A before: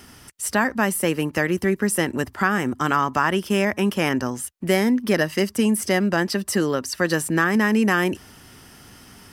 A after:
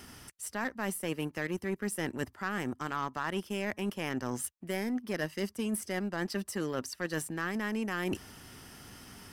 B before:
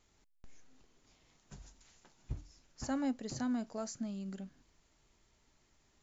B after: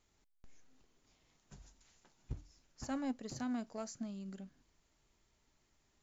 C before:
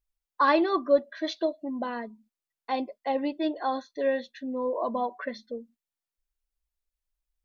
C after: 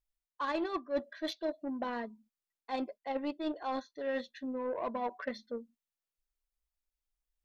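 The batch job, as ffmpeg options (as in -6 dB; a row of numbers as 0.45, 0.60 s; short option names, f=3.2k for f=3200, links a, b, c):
-af "areverse,acompressor=threshold=-31dB:ratio=6,areverse,aeval=exprs='0.106*(cos(1*acos(clip(val(0)/0.106,-1,1)))-cos(1*PI/2))+0.00596*(cos(7*acos(clip(val(0)/0.106,-1,1)))-cos(7*PI/2))':c=same"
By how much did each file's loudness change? -13.5, -3.5, -9.0 LU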